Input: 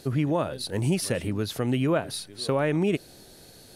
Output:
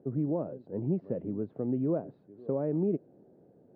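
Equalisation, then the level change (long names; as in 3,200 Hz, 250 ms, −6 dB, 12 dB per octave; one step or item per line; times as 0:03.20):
flat-topped band-pass 300 Hz, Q 0.66
high-frequency loss of the air 300 metres
−3.5 dB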